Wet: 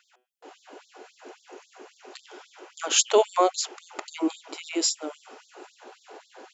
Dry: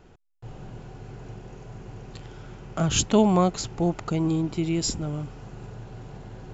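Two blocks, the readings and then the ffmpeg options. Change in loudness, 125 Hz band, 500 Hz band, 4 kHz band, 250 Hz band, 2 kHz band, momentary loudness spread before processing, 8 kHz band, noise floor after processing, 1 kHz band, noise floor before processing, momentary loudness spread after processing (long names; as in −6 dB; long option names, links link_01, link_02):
0.0 dB, below −40 dB, +1.0 dB, +4.0 dB, −9.0 dB, +3.0 dB, 22 LU, can't be measured, −67 dBFS, +2.0 dB, −53 dBFS, 19 LU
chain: -af "bandreject=frequency=124.8:width_type=h:width=4,bandreject=frequency=249.6:width_type=h:width=4,bandreject=frequency=374.4:width_type=h:width=4,bandreject=frequency=499.2:width_type=h:width=4,bandreject=frequency=624:width_type=h:width=4,bandreject=frequency=748.8:width_type=h:width=4,bandreject=frequency=873.6:width_type=h:width=4,bandreject=frequency=998.4:width_type=h:width=4,bandreject=frequency=1123.2:width_type=h:width=4,bandreject=frequency=1248:width_type=h:width=4,bandreject=frequency=1372.8:width_type=h:width=4,bandreject=frequency=1497.6:width_type=h:width=4,bandreject=frequency=1622.4:width_type=h:width=4,bandreject=frequency=1747.2:width_type=h:width=4,bandreject=frequency=1872:width_type=h:width=4,bandreject=frequency=1996.8:width_type=h:width=4,bandreject=frequency=2121.6:width_type=h:width=4,bandreject=frequency=2246.4:width_type=h:width=4,bandreject=frequency=2371.2:width_type=h:width=4,bandreject=frequency=2496:width_type=h:width=4,bandreject=frequency=2620.8:width_type=h:width=4,bandreject=frequency=2745.6:width_type=h:width=4,bandreject=frequency=2870.4:width_type=h:width=4,bandreject=frequency=2995.2:width_type=h:width=4,bandreject=frequency=3120:width_type=h:width=4,bandreject=frequency=3244.8:width_type=h:width=4,bandreject=frequency=3369.6:width_type=h:width=4,afftfilt=real='re*gte(b*sr/1024,250*pow(3500/250,0.5+0.5*sin(2*PI*3.7*pts/sr)))':imag='im*gte(b*sr/1024,250*pow(3500/250,0.5+0.5*sin(2*PI*3.7*pts/sr)))':win_size=1024:overlap=0.75,volume=4dB"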